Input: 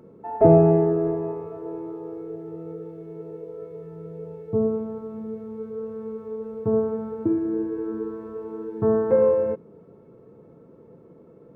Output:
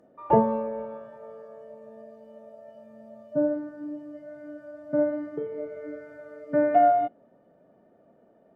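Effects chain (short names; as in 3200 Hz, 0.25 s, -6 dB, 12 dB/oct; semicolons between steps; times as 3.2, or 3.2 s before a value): treble ducked by the level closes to 2000 Hz, closed at -17 dBFS; speed mistake 33 rpm record played at 45 rpm; spectral noise reduction 10 dB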